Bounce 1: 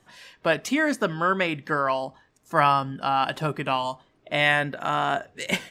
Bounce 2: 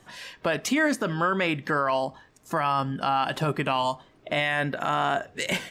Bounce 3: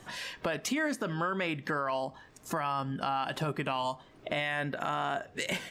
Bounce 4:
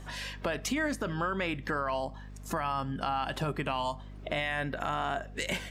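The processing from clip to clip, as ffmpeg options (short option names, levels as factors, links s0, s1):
-filter_complex "[0:a]asplit=2[s0][s1];[s1]acompressor=threshold=0.0251:ratio=6,volume=1[s2];[s0][s2]amix=inputs=2:normalize=0,alimiter=limit=0.178:level=0:latency=1:release=23"
-af "acompressor=threshold=0.00891:ratio=2,volume=1.5"
-af "aeval=exprs='val(0)+0.00631*(sin(2*PI*50*n/s)+sin(2*PI*2*50*n/s)/2+sin(2*PI*3*50*n/s)/3+sin(2*PI*4*50*n/s)/4+sin(2*PI*5*50*n/s)/5)':c=same"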